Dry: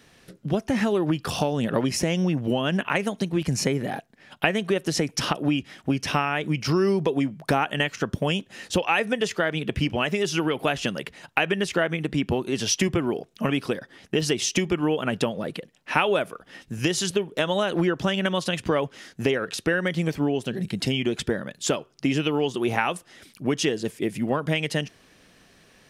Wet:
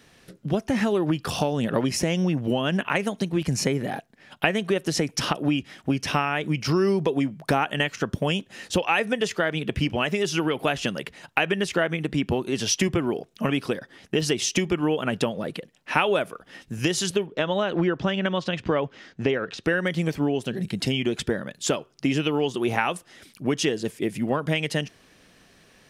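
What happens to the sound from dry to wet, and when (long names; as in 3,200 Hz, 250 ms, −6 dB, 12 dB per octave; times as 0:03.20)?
0:17.26–0:19.64: high-frequency loss of the air 140 metres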